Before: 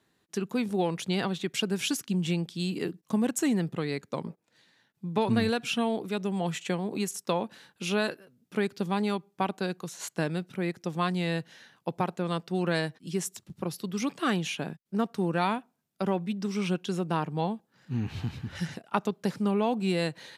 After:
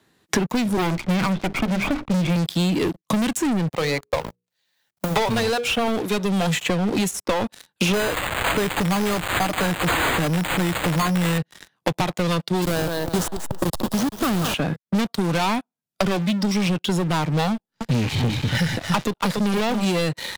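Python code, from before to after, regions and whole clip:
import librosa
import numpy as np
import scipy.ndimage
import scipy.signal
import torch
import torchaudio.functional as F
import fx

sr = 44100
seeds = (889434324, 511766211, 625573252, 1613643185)

y = fx.chain(x, sr, fx.lower_of_two(delay_ms=0.83),
    fx.lowpass(hz=2000.0, slope=24),
    fx.hum_notches(base_hz=50, count=9), at=(0.77, 2.36))
y = fx.chain(y, sr, fx.law_mismatch(coded='A'),
    fx.low_shelf_res(hz=410.0, db=-6.0, q=1.5),
    fx.hum_notches(base_hz=60, count=8), at=(3.69, 5.88))
y = fx.chain(y, sr, fx.crossing_spikes(level_db=-20.0),
    fx.comb(ms=6.7, depth=0.39),
    fx.resample_bad(factor=8, down='none', up='hold'), at=(7.93, 11.38))
y = fx.chain(y, sr, fx.delta_hold(step_db=-29.5),
    fx.peak_eq(hz=2200.0, db=-14.0, octaves=0.4),
    fx.echo_thinned(ms=184, feedback_pct=25, hz=170.0, wet_db=-11.0), at=(12.62, 14.54))
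y = fx.chain(y, sr, fx.halfwave_gain(db=-3.0),
    fx.echo_single(ms=285, db=-7.0), at=(17.52, 19.85))
y = fx.noise_reduce_blind(y, sr, reduce_db=7)
y = fx.leveller(y, sr, passes=5)
y = fx.band_squash(y, sr, depth_pct=100)
y = F.gain(torch.from_numpy(y), -4.5).numpy()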